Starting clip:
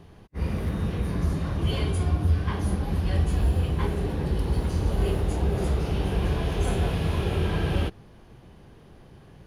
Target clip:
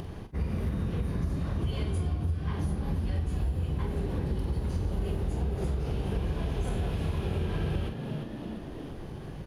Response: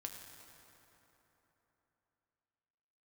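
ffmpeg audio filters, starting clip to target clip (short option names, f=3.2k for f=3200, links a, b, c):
-filter_complex "[0:a]lowshelf=f=430:g=4,asplit=5[a][b][c][d][e];[b]adelay=347,afreqshift=70,volume=-13.5dB[f];[c]adelay=694,afreqshift=140,volume=-21.2dB[g];[d]adelay=1041,afreqshift=210,volume=-29dB[h];[e]adelay=1388,afreqshift=280,volume=-36.7dB[i];[a][f][g][h][i]amix=inputs=5:normalize=0,acompressor=mode=upward:threshold=-28dB:ratio=2.5,asplit=2[j][k];[k]adelay=46,volume=-10dB[l];[j][l]amix=inputs=2:normalize=0,acompressor=threshold=-24dB:ratio=6,volume=-2.5dB"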